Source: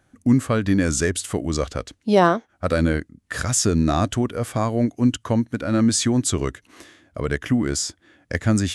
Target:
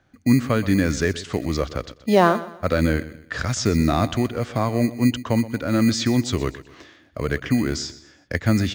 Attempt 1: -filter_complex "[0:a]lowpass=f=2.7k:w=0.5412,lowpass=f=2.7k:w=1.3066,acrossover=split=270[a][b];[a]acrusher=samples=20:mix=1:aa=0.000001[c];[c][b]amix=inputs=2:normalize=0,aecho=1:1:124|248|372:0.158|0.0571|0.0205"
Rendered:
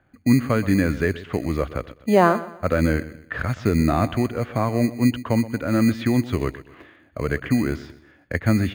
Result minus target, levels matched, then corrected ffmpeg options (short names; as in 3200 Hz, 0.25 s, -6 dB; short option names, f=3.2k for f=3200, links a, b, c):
4000 Hz band -7.5 dB
-filter_complex "[0:a]lowpass=f=5.6k:w=0.5412,lowpass=f=5.6k:w=1.3066,acrossover=split=270[a][b];[a]acrusher=samples=20:mix=1:aa=0.000001[c];[c][b]amix=inputs=2:normalize=0,aecho=1:1:124|248|372:0.158|0.0571|0.0205"